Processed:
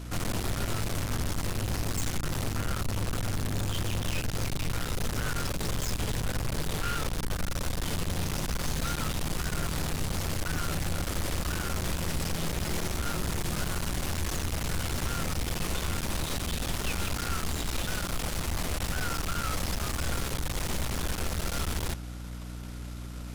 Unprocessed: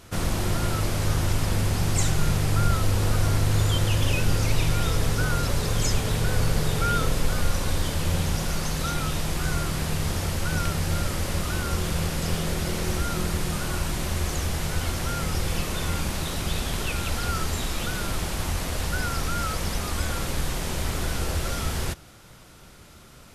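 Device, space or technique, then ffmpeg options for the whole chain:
valve amplifier with mains hum: -af "aeval=exprs='(tanh(63.1*val(0)+0.8)-tanh(0.8))/63.1':c=same,aeval=exprs='val(0)+0.00631*(sin(2*PI*60*n/s)+sin(2*PI*2*60*n/s)/2+sin(2*PI*3*60*n/s)/3+sin(2*PI*4*60*n/s)/4+sin(2*PI*5*60*n/s)/5)':c=same,volume=2"

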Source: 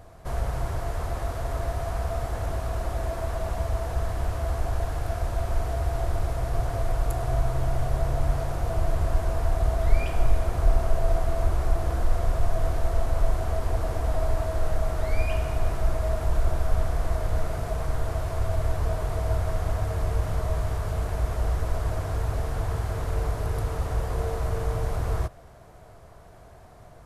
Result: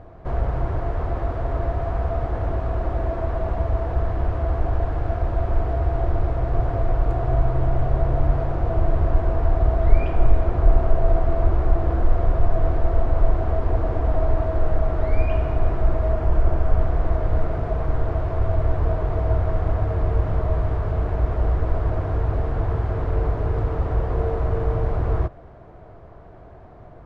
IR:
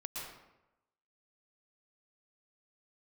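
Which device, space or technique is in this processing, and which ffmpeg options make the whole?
phone in a pocket: -filter_complex "[0:a]lowpass=3100,equalizer=f=330:t=o:w=0.65:g=5,highshelf=f=2000:g=-9.5,asettb=1/sr,asplit=3[s0][s1][s2];[s0]atrim=end=16.124[s3];[s1]atrim=start=16.12:end=16.81,asetpts=PTS-STARTPTS,afade=t=in:d=0.004:c=qsin,afade=t=out:st=0.686:d=0.004:c=qsin,bandreject=f=3800:w=10[s4];[s2]atrim=start=16.806[s5];[s3][s4]acrossfade=d=0.004:c1=hsin:c2=qsin[s6];[s6][s5]acrossfade=d=0.004:c1=qsin:c2=hsin,volume=1.78"

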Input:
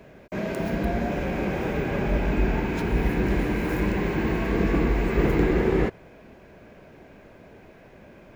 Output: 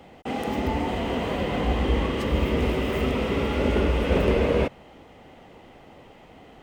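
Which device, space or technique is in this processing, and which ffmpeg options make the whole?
nightcore: -af "asetrate=55566,aresample=44100"

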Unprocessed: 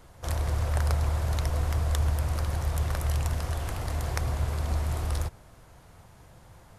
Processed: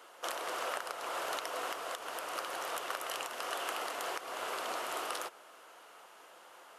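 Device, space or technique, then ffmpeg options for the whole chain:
laptop speaker: -af "highpass=f=370:w=0.5412,highpass=f=370:w=1.3066,equalizer=f=1300:t=o:w=0.53:g=7,equalizer=f=2900:t=o:w=0.38:g=8.5,alimiter=limit=0.0841:level=0:latency=1:release=265"

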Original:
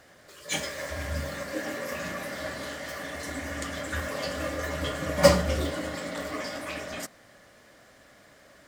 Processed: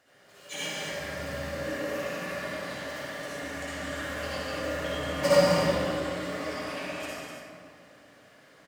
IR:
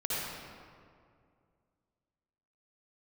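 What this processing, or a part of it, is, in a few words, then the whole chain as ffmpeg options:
stadium PA: -filter_complex "[0:a]highpass=f=170:p=1,equalizer=f=2800:t=o:w=0.24:g=5,aecho=1:1:145.8|192.4|250.7:0.355|0.316|0.355[s0];[1:a]atrim=start_sample=2205[s1];[s0][s1]afir=irnorm=-1:irlink=0,volume=0.376"

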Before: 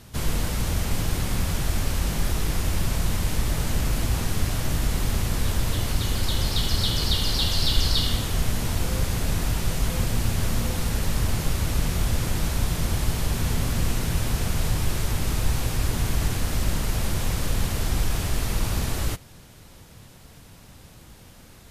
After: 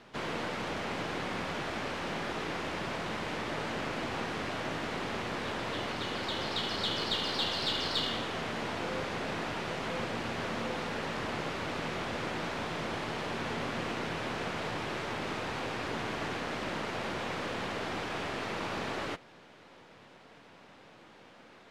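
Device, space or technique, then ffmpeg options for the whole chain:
crystal radio: -af "highpass=320,lowpass=2700,aeval=exprs='if(lt(val(0),0),0.708*val(0),val(0))':c=same,volume=1.19"

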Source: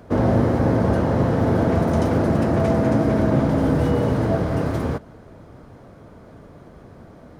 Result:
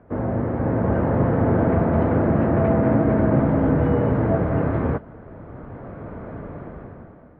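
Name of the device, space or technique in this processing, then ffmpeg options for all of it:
action camera in a waterproof case: -af "lowpass=f=2100:w=0.5412,lowpass=f=2100:w=1.3066,dynaudnorm=f=170:g=9:m=6.68,volume=0.473" -ar 24000 -c:a aac -b:a 48k

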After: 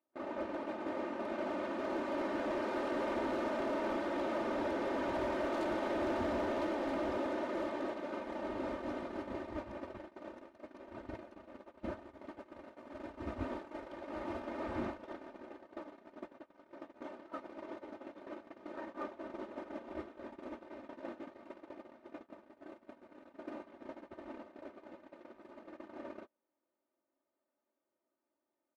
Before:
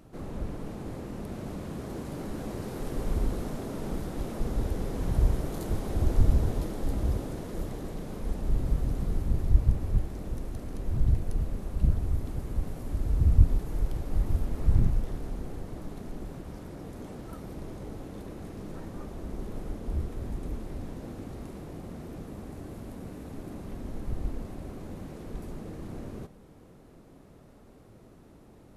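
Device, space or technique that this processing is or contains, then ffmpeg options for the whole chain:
walkie-talkie: -af "highpass=490,lowpass=2400,aecho=1:1:3.3:0.97,asoftclip=type=hard:threshold=0.0158,agate=range=0.0178:threshold=0.00631:ratio=16:detection=peak,volume=1.88"

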